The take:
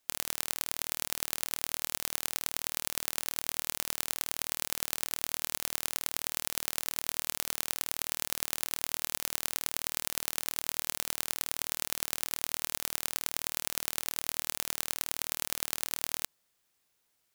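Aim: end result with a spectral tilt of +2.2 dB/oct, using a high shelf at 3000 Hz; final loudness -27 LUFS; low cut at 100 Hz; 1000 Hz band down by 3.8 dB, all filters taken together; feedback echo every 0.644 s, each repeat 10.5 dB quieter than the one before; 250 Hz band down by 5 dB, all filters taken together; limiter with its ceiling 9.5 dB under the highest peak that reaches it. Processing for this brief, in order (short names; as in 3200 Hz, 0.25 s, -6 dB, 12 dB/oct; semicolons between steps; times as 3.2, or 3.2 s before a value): HPF 100 Hz; bell 250 Hz -6.5 dB; bell 1000 Hz -6 dB; high shelf 3000 Hz +9 dB; limiter -4.5 dBFS; feedback echo 0.644 s, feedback 30%, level -10.5 dB; gain +3.5 dB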